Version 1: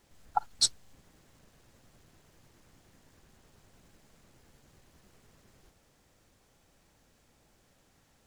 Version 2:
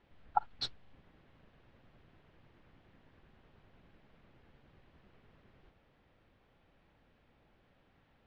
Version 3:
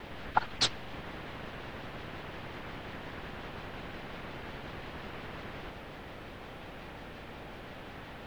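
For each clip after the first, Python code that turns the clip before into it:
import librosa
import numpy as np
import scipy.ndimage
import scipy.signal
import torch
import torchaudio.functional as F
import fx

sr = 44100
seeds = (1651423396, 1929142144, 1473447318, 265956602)

y1 = scipy.signal.sosfilt(scipy.signal.butter(4, 3300.0, 'lowpass', fs=sr, output='sos'), x)
y1 = y1 * librosa.db_to_amplitude(-1.5)
y2 = fx.vibrato(y1, sr, rate_hz=5.6, depth_cents=79.0)
y2 = fx.spectral_comp(y2, sr, ratio=2.0)
y2 = y2 * librosa.db_to_amplitude(2.5)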